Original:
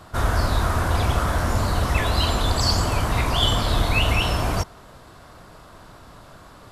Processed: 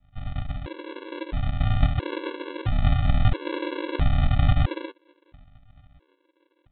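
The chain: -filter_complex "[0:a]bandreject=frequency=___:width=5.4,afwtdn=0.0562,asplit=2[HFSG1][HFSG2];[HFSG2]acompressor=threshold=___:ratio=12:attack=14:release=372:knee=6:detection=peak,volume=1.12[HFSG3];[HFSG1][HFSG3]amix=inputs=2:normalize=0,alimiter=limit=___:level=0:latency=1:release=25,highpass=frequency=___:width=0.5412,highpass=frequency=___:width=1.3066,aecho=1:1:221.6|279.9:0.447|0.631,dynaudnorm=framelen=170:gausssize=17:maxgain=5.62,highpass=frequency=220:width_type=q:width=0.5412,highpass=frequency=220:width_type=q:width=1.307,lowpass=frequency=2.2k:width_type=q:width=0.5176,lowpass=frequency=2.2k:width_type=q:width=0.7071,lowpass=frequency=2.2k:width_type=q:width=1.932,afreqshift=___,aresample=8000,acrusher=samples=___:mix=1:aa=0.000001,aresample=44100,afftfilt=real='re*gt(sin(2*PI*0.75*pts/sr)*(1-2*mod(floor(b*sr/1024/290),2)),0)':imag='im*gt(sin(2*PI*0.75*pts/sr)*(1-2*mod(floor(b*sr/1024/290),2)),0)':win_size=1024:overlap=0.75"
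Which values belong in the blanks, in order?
950, 0.02, 0.2, 51, 51, -260, 37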